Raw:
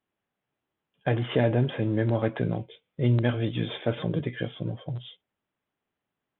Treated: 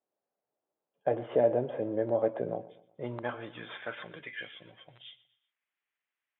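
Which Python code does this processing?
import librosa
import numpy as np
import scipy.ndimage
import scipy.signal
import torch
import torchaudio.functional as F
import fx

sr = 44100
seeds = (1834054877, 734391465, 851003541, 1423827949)

p1 = fx.filter_sweep_bandpass(x, sr, from_hz=580.0, to_hz=2200.0, start_s=2.52, end_s=4.33, q=2.1)
p2 = p1 + fx.echo_feedback(p1, sr, ms=122, feedback_pct=42, wet_db=-18.5, dry=0)
y = F.gain(torch.from_numpy(p2), 2.5).numpy()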